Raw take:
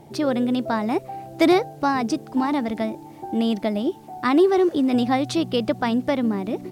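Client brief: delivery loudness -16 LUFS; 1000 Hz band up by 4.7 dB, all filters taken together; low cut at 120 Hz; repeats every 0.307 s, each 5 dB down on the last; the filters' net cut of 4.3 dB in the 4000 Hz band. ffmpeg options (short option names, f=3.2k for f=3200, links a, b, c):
-af "highpass=120,equalizer=f=1k:t=o:g=6.5,equalizer=f=4k:t=o:g=-6,aecho=1:1:307|614|921|1228|1535|1842|2149:0.562|0.315|0.176|0.0988|0.0553|0.031|0.0173,volume=3.5dB"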